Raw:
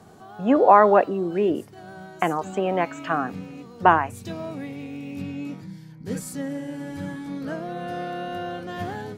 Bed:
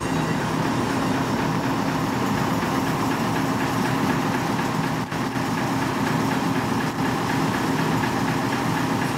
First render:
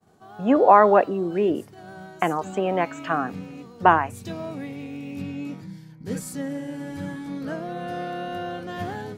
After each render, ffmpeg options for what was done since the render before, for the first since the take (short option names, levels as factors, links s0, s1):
-af "agate=range=0.0224:threshold=0.00891:ratio=3:detection=peak"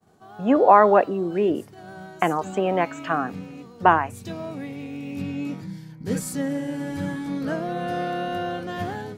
-af "dynaudnorm=f=450:g=5:m=1.58"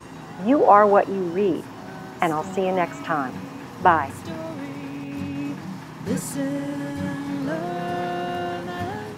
-filter_complex "[1:a]volume=0.158[s0];[0:a][s0]amix=inputs=2:normalize=0"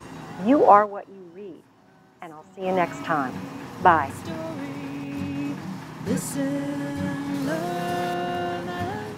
-filter_complex "[0:a]asettb=1/sr,asplit=3[s0][s1][s2];[s0]atrim=end=7.344[s3];[s1]atrim=start=7.34:end=8.14,asetpts=PTS-STARTPTS,afade=t=in:d=0.004:c=qsin,afade=t=out:st=0.796:d=0.004:c=qsin,highshelf=f=4900:g=10[s4];[s2]atrim=start=8.136[s5];[s3][s4]acrossfade=d=0.004:c1=hsin:c2=qsin[s6];[s6][s5]acrossfade=d=0.004:c1=qsin:c2=hsin,asplit=3[s7][s8][s9];[s7]atrim=end=0.87,asetpts=PTS-STARTPTS,afade=t=out:st=0.75:d=0.12:silence=0.125893[s10];[s8]atrim=start=0.87:end=2.59,asetpts=PTS-STARTPTS,volume=0.126[s11];[s9]atrim=start=2.59,asetpts=PTS-STARTPTS,afade=t=in:d=0.12:silence=0.125893[s12];[s10][s11][s12]concat=n=3:v=0:a=1"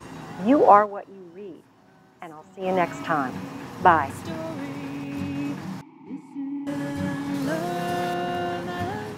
-filter_complex "[0:a]asettb=1/sr,asplit=3[s0][s1][s2];[s0]atrim=end=5.814[s3];[s1]atrim=start=5.81:end=6.67,asetpts=PTS-STARTPTS,afade=t=in:d=0.004:c=qsin,afade=t=out:st=0.856:d=0.004:c=qsin,asplit=3[s4][s5][s6];[s4]bandpass=f=300:t=q:w=8,volume=1[s7];[s5]bandpass=f=870:t=q:w=8,volume=0.501[s8];[s6]bandpass=f=2240:t=q:w=8,volume=0.355[s9];[s7][s8][s9]amix=inputs=3:normalize=0[s10];[s2]atrim=start=6.666[s11];[s3][s10]acrossfade=d=0.004:c1=hsin:c2=qsin[s12];[s12][s11]acrossfade=d=0.004:c1=qsin:c2=hsin"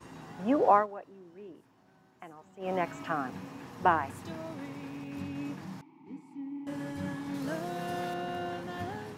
-af "volume=0.376"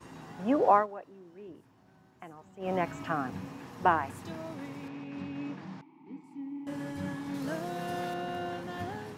-filter_complex "[0:a]asettb=1/sr,asplit=3[s0][s1][s2];[s0]atrim=end=1.474[s3];[s1]atrim=start=1.47:end=3.54,asetpts=PTS-STARTPTS,afade=t=in:d=0.004:c=qsin,afade=t=out:st=2.066:d=0.004:c=qsin,equalizer=f=74:w=0.64:g=8[s4];[s2]atrim=start=3.536[s5];[s3][s4]acrossfade=d=0.004:c1=hsin:c2=qsin[s6];[s6][s5]acrossfade=d=0.004:c1=qsin:c2=hsin,asettb=1/sr,asplit=3[s7][s8][s9];[s7]atrim=end=4.884[s10];[s8]atrim=start=4.88:end=6.24,asetpts=PTS-STARTPTS,afade=t=in:d=0.004:c=qsin,afade=t=out:st=1.356:d=0.004:c=qsin,highpass=130,lowpass=4300[s11];[s9]atrim=start=6.236[s12];[s10][s11]acrossfade=d=0.004:c1=hsin:c2=qsin[s13];[s13][s12]acrossfade=d=0.004:c1=qsin:c2=hsin"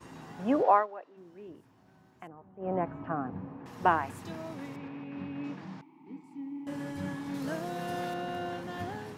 -filter_complex "[0:a]asplit=3[s0][s1][s2];[s0]afade=t=out:st=0.62:d=0.02[s3];[s1]highpass=380,lowpass=4400,afade=t=in:st=0.62:d=0.02,afade=t=out:st=1.16:d=0.02[s4];[s2]afade=t=in:st=1.16:d=0.02[s5];[s3][s4][s5]amix=inputs=3:normalize=0,asettb=1/sr,asplit=3[s6][s7][s8];[s6]atrim=end=2.274[s9];[s7]atrim=start=2.27:end=3.66,asetpts=PTS-STARTPTS,afade=t=in:d=0.004:c=qsin,afade=t=out:st=1.386:d=0.004:c=qsin,lowpass=1100[s10];[s8]atrim=start=3.656[s11];[s9][s10]acrossfade=d=0.004:c1=hsin:c2=qsin[s12];[s12][s11]acrossfade=d=0.004:c1=qsin:c2=hsin,asettb=1/sr,asplit=3[s13][s14][s15];[s13]atrim=end=4.764[s16];[s14]atrim=start=4.76:end=5.44,asetpts=PTS-STARTPTS,afade=t=in:d=0.004:c=qsin,afade=t=out:st=0.676:d=0.004:c=qsin,lowpass=3000[s17];[s15]atrim=start=5.436[s18];[s16][s17]acrossfade=d=0.004:c1=hsin:c2=qsin[s19];[s19][s18]acrossfade=d=0.004:c1=qsin:c2=hsin"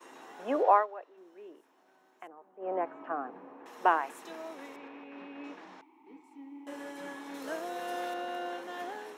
-af "highpass=f=340:w=0.5412,highpass=f=340:w=1.3066,bandreject=f=4700:w=9"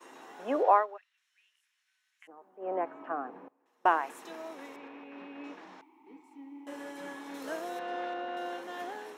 -filter_complex "[0:a]asplit=3[s0][s1][s2];[s0]afade=t=out:st=0.96:d=0.02[s3];[s1]asuperpass=centerf=5200:order=8:qfactor=0.52,afade=t=in:st=0.96:d=0.02,afade=t=out:st=2.27:d=0.02[s4];[s2]afade=t=in:st=2.27:d=0.02[s5];[s3][s4][s5]amix=inputs=3:normalize=0,asettb=1/sr,asplit=3[s6][s7][s8];[s6]atrim=end=3.484[s9];[s7]atrim=start=3.48:end=3.9,asetpts=PTS-STARTPTS,afade=t=in:d=0.004:c=qsin,afade=t=out:st=0.416:d=0.004:c=qsin,agate=range=0.0708:threshold=0.0158:ratio=16:release=100:detection=peak[s10];[s8]atrim=start=3.896[s11];[s9][s10]acrossfade=d=0.004:c1=hsin:c2=qsin[s12];[s12][s11]acrossfade=d=0.004:c1=qsin:c2=hsin,asettb=1/sr,asplit=3[s13][s14][s15];[s13]atrim=end=7.794[s16];[s14]atrim=start=7.79:end=8.37,asetpts=PTS-STARTPTS,afade=t=in:d=0.004:c=qsin,afade=t=out:st=0.576:d=0.004:c=qsin,highpass=140,lowpass=3200[s17];[s15]atrim=start=8.366[s18];[s16][s17]acrossfade=d=0.004:c1=hsin:c2=qsin[s19];[s19][s18]acrossfade=d=0.004:c1=qsin:c2=hsin"